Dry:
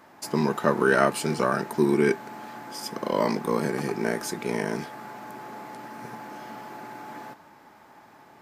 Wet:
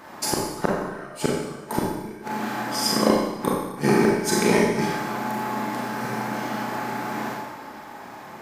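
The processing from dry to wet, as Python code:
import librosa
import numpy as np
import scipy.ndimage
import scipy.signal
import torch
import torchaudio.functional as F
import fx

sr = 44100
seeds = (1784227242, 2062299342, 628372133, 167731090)

y = fx.gate_flip(x, sr, shuts_db=-15.0, range_db=-31)
y = fx.rev_schroeder(y, sr, rt60_s=1.0, comb_ms=29, drr_db=-3.0)
y = y * librosa.db_to_amplitude(8.0)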